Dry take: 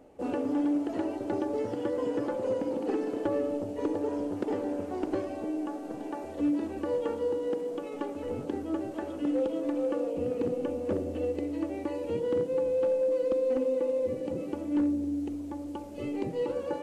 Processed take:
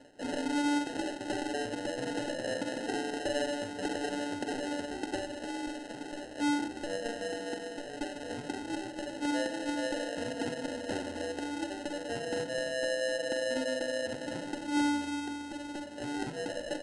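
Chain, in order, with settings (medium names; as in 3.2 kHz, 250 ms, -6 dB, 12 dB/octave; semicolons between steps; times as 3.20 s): high-pass 78 Hz; comb 7.1 ms, depth 32%; reverse; upward compressor, threshold -34 dBFS; reverse; sample-and-hold 38×; on a send at -11 dB: reverberation RT60 0.60 s, pre-delay 4 ms; on the sum: resampled via 22.05 kHz; trim -5 dB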